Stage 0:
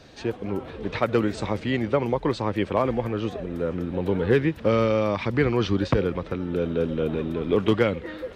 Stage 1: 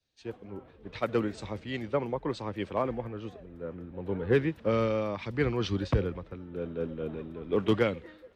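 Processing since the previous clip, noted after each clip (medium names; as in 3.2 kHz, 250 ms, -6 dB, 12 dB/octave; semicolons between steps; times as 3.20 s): three bands expanded up and down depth 100%; trim -7.5 dB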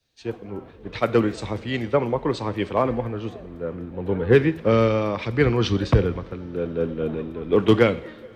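two-slope reverb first 0.56 s, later 4.8 s, from -18 dB, DRR 13.5 dB; trim +8.5 dB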